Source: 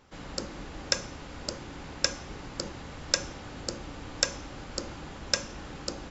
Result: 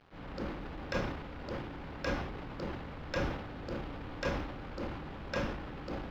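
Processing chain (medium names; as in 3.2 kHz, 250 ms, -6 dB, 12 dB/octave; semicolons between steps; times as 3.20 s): companded quantiser 4-bit; transient shaper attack -5 dB, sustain +9 dB; distance through air 350 m; trim -1.5 dB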